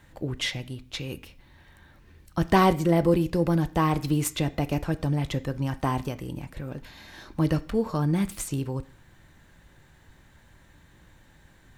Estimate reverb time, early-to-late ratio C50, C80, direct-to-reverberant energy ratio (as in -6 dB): 0.45 s, 18.5 dB, 22.0 dB, 11.5 dB